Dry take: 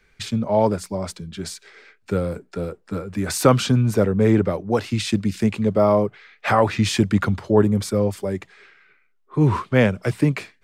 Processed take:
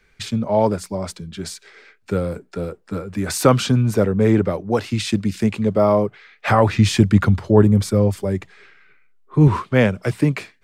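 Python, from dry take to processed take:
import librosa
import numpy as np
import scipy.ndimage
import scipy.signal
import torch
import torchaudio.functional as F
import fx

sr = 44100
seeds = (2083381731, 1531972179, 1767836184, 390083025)

y = fx.low_shelf(x, sr, hz=140.0, db=9.5, at=(6.48, 9.48))
y = y * librosa.db_to_amplitude(1.0)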